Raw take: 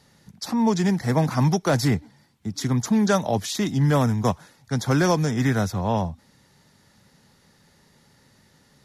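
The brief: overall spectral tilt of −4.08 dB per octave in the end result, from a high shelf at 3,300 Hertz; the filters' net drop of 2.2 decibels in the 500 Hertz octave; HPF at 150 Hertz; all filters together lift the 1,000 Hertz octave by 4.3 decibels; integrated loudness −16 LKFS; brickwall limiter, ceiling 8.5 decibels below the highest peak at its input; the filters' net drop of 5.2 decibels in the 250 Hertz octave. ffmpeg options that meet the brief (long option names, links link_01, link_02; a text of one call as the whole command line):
ffmpeg -i in.wav -af "highpass=150,equalizer=frequency=250:width_type=o:gain=-5,equalizer=frequency=500:width_type=o:gain=-3.5,equalizer=frequency=1000:width_type=o:gain=6,highshelf=frequency=3300:gain=7,volume=11dB,alimiter=limit=-4.5dB:level=0:latency=1" out.wav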